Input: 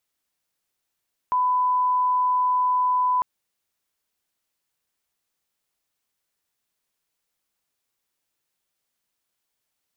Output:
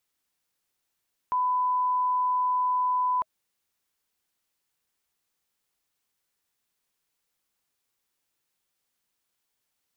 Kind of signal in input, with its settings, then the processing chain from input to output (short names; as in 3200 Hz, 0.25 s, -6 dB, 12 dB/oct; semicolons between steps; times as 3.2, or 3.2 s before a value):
line-up tone -18 dBFS 1.90 s
notch 630 Hz, Q 12; limiter -22 dBFS